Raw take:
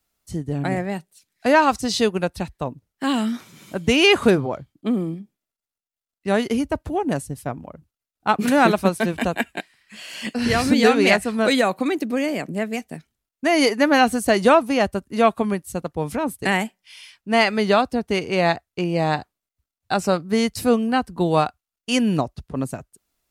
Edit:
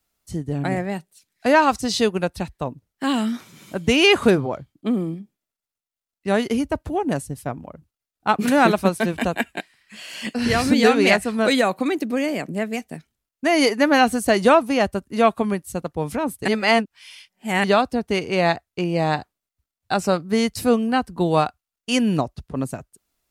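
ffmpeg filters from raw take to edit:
ffmpeg -i in.wav -filter_complex "[0:a]asplit=3[link_01][link_02][link_03];[link_01]atrim=end=16.482[link_04];[link_02]atrim=start=16.478:end=17.642,asetpts=PTS-STARTPTS,areverse[link_05];[link_03]atrim=start=17.638[link_06];[link_04][link_05]acrossfade=duration=0.004:curve1=hsin:curve2=hsin[link_07];[link_07][link_06]acrossfade=duration=0.004:curve1=hsin:curve2=hsin" out.wav

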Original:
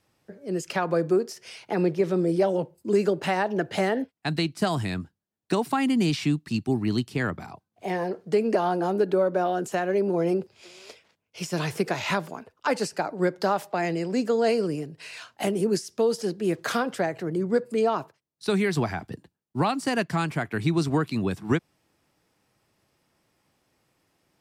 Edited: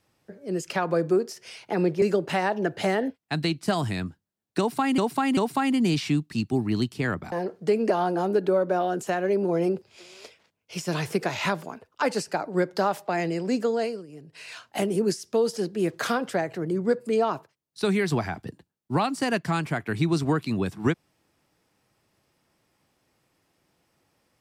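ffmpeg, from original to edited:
ffmpeg -i in.wav -filter_complex "[0:a]asplit=6[link_01][link_02][link_03][link_04][link_05][link_06];[link_01]atrim=end=2.022[link_07];[link_02]atrim=start=2.958:end=5.922[link_08];[link_03]atrim=start=5.528:end=5.922[link_09];[link_04]atrim=start=5.528:end=7.482[link_10];[link_05]atrim=start=7.968:end=14.72,asetpts=PTS-STARTPTS,afade=type=out:start_time=6.292:duration=0.46:silence=0.105925[link_11];[link_06]atrim=start=14.72,asetpts=PTS-STARTPTS,afade=type=in:duration=0.46:silence=0.105925[link_12];[link_07][link_08]acrossfade=duration=0.004:curve1=hsin:curve2=hsin[link_13];[link_13][link_09]acrossfade=duration=0.004:curve1=hsin:curve2=hsin[link_14];[link_14][link_10]acrossfade=duration=0.004:curve1=hsin:curve2=hsin[link_15];[link_11][link_12]concat=n=2:v=0:a=1[link_16];[link_15][link_16]acrossfade=duration=0.004:curve1=hsin:curve2=hsin" out.wav

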